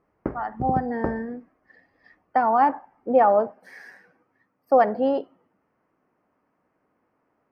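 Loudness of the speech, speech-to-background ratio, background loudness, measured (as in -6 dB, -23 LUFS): -23.0 LUFS, 9.5 dB, -32.5 LUFS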